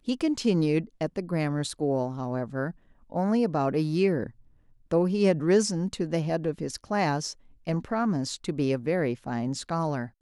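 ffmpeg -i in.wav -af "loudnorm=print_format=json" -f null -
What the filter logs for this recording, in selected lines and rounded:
"input_i" : "-28.0",
"input_tp" : "-10.0",
"input_lra" : "3.3",
"input_thresh" : "-38.3",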